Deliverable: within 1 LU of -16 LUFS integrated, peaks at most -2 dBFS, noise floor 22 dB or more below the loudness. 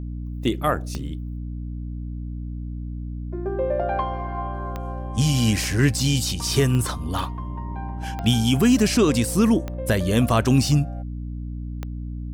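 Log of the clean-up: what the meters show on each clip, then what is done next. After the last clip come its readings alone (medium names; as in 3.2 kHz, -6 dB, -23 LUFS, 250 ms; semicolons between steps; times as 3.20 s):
clicks found 8; hum 60 Hz; highest harmonic 300 Hz; hum level -28 dBFS; loudness -23.5 LUFS; peak level -7.0 dBFS; loudness target -16.0 LUFS
-> de-click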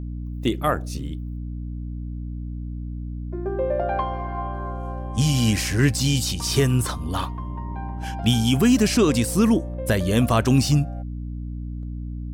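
clicks found 1; hum 60 Hz; highest harmonic 300 Hz; hum level -28 dBFS
-> hum notches 60/120/180/240/300 Hz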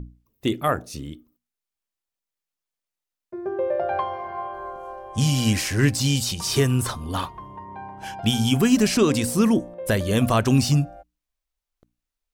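hum not found; loudness -22.5 LUFS; peak level -7.0 dBFS; loudness target -16.0 LUFS
-> trim +6.5 dB; peak limiter -2 dBFS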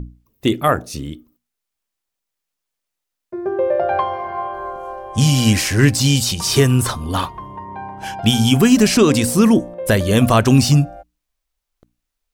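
loudness -16.0 LUFS; peak level -2.0 dBFS; noise floor -81 dBFS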